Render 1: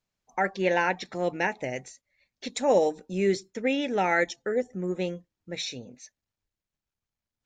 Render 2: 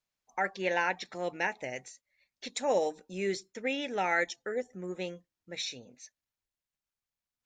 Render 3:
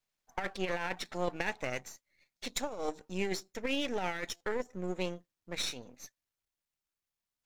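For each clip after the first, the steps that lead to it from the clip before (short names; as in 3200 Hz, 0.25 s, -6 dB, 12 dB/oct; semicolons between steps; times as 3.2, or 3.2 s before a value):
low shelf 490 Hz -8.5 dB; gain -2.5 dB
half-wave gain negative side -12 dB; negative-ratio compressor -34 dBFS, ratio -0.5; stuck buffer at 2.37/4.36, samples 256, times 7; gain +2 dB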